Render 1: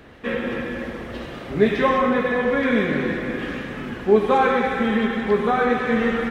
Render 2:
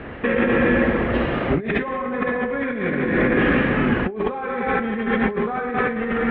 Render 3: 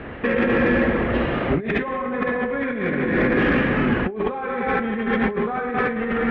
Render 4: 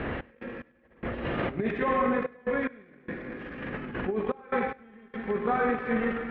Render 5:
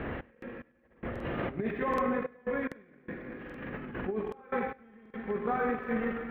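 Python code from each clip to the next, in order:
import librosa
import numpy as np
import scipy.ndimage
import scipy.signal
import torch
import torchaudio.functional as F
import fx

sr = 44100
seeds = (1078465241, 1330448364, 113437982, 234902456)

y1 = scipy.signal.sosfilt(scipy.signal.butter(4, 2700.0, 'lowpass', fs=sr, output='sos'), x)
y1 = fx.over_compress(y1, sr, threshold_db=-28.0, ratio=-1.0)
y1 = F.gain(torch.from_numpy(y1), 6.0).numpy()
y2 = 10.0 ** (-8.0 / 20.0) * np.tanh(y1 / 10.0 ** (-8.0 / 20.0))
y3 = fx.over_compress(y2, sr, threshold_db=-26.0, ratio=-0.5)
y3 = fx.step_gate(y3, sr, bpm=73, pattern='x.x..xxxxx', floor_db=-24.0, edge_ms=4.5)
y3 = y3 + 10.0 ** (-23.5 / 20.0) * np.pad(y3, (int(100 * sr / 1000.0), 0))[:len(y3)]
y3 = F.gain(torch.from_numpy(y3), -3.0).numpy()
y4 = fx.air_absorb(y3, sr, metres=160.0)
y4 = fx.buffer_crackle(y4, sr, first_s=0.33, period_s=0.78, block=2048, kind='repeat')
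y4 = np.interp(np.arange(len(y4)), np.arange(len(y4))[::2], y4[::2])
y4 = F.gain(torch.from_numpy(y4), -3.5).numpy()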